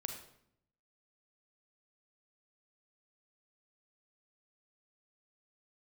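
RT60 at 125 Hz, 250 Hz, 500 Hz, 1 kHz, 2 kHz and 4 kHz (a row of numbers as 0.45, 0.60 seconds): 1.1, 0.95, 0.75, 0.65, 0.60, 0.55 seconds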